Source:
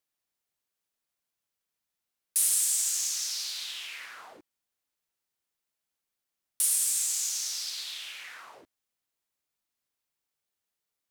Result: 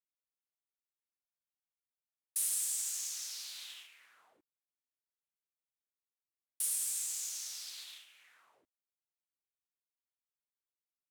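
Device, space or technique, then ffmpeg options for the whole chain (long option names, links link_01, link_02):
exciter from parts: -filter_complex "[0:a]agate=range=-11dB:threshold=-38dB:ratio=16:detection=peak,asplit=2[link_01][link_02];[link_02]highpass=frequency=4600:width=0.5412,highpass=frequency=4600:width=1.3066,asoftclip=type=tanh:threshold=-33dB,volume=-7dB[link_03];[link_01][link_03]amix=inputs=2:normalize=0,volume=-9dB"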